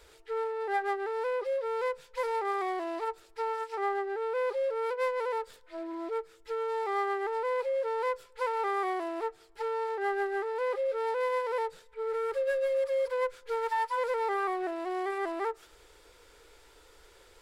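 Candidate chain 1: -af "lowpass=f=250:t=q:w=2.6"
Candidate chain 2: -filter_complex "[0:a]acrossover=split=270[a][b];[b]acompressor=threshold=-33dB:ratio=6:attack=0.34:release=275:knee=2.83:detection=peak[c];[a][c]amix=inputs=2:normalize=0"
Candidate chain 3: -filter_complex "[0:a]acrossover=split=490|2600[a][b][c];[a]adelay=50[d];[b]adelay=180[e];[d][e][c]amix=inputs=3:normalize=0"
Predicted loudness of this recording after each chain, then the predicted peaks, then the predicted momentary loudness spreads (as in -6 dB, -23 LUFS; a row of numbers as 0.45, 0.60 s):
-41.5, -38.0, -34.5 LUFS; -32.0, -28.5, -21.5 dBFS; 7, 8, 7 LU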